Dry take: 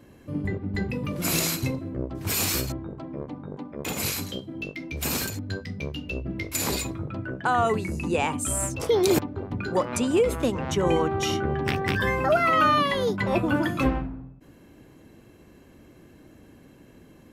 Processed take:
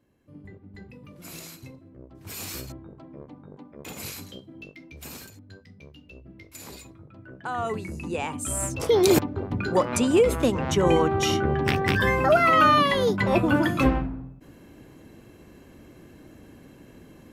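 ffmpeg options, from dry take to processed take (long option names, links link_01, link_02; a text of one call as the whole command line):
ffmpeg -i in.wav -af "volume=9.5dB,afade=type=in:start_time=1.99:duration=0.7:silence=0.398107,afade=type=out:start_time=4.51:duration=0.79:silence=0.446684,afade=type=in:start_time=7.16:duration=0.6:silence=0.298538,afade=type=in:start_time=8.29:duration=0.76:silence=0.421697" out.wav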